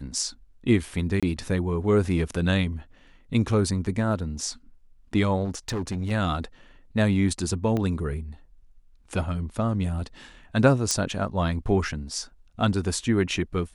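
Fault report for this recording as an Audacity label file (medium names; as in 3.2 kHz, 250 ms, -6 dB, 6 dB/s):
1.200000	1.230000	dropout 26 ms
5.440000	6.120000	clipped -25 dBFS
7.770000	7.770000	pop -16 dBFS
10.910000	10.910000	pop -9 dBFS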